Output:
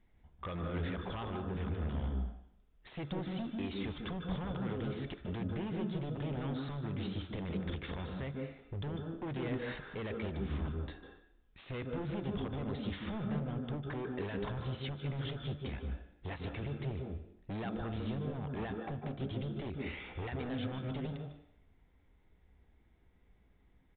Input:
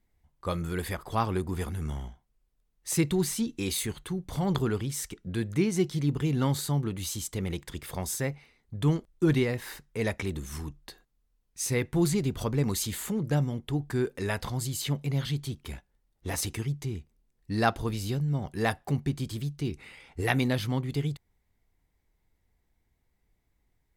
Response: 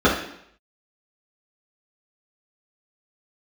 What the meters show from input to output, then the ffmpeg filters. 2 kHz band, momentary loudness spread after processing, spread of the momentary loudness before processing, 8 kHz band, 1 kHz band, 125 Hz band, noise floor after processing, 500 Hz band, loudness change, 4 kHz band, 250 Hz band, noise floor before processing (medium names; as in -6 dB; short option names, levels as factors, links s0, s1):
-10.0 dB, 6 LU, 12 LU, under -40 dB, -9.5 dB, -9.0 dB, -67 dBFS, -8.5 dB, -9.5 dB, -10.0 dB, -8.5 dB, -75 dBFS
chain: -filter_complex "[0:a]acompressor=threshold=0.0112:ratio=4,alimiter=level_in=2.99:limit=0.0631:level=0:latency=1:release=51,volume=0.335,aeval=exprs='0.0112*(abs(mod(val(0)/0.0112+3,4)-2)-1)':c=same,asplit=2[s0][s1];[1:a]atrim=start_sample=2205,adelay=143[s2];[s1][s2]afir=irnorm=-1:irlink=0,volume=0.0501[s3];[s0][s3]amix=inputs=2:normalize=0,aresample=8000,aresample=44100,volume=1.68"